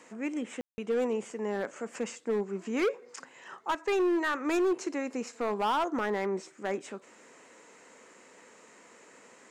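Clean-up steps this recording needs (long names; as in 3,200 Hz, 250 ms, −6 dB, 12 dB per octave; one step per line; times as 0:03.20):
clipped peaks rebuilt −23.5 dBFS
ambience match 0:00.61–0:00.78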